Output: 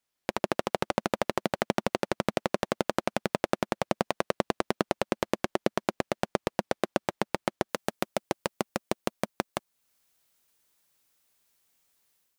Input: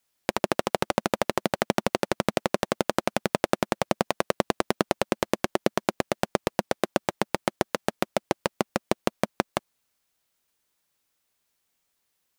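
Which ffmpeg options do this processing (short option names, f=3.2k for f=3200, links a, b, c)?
-af "asetnsamples=n=441:p=0,asendcmd='7.69 highshelf g 4',highshelf=f=6.4k:g=-5.5,dynaudnorm=f=110:g=5:m=7.5dB,volume=-5.5dB"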